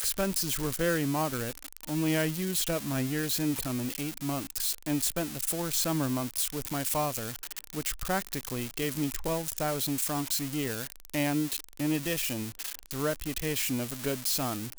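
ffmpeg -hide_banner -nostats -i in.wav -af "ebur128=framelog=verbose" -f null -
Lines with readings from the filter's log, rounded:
Integrated loudness:
  I:         -30.3 LUFS
  Threshold: -40.3 LUFS
Loudness range:
  LRA:         2.2 LU
  Threshold: -50.5 LUFS
  LRA low:   -31.7 LUFS
  LRA high:  -29.5 LUFS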